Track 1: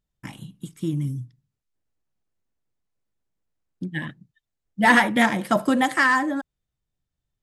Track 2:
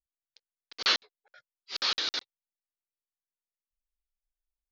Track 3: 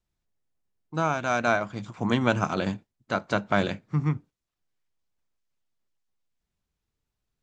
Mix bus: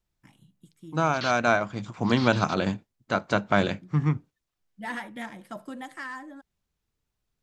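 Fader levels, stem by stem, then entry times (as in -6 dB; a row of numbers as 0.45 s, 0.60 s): -18.5 dB, -10.5 dB, +1.5 dB; 0.00 s, 0.35 s, 0.00 s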